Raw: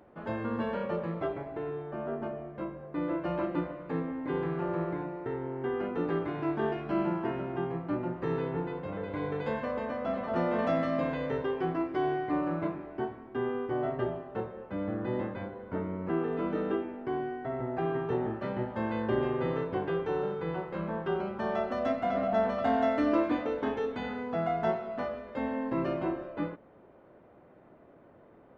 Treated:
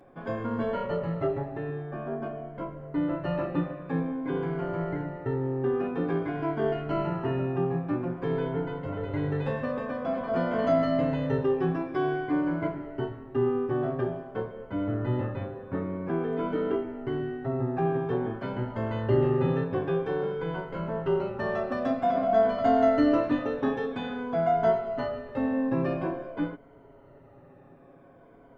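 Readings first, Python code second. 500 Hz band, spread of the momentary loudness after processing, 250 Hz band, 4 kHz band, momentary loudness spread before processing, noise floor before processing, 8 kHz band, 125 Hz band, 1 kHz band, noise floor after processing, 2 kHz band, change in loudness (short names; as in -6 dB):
+4.0 dB, 10 LU, +3.5 dB, +2.5 dB, 8 LU, -57 dBFS, n/a, +6.5 dB, +2.5 dB, -53 dBFS, +1.5 dB, +3.5 dB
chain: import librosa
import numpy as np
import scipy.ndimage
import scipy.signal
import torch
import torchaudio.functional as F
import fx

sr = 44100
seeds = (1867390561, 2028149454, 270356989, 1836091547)

y = fx.spec_ripple(x, sr, per_octave=1.8, drift_hz=-0.5, depth_db=10)
y = fx.low_shelf(y, sr, hz=100.0, db=10.0)
y = y + 0.59 * np.pad(y, (int(7.3 * sr / 1000.0), 0))[:len(y)]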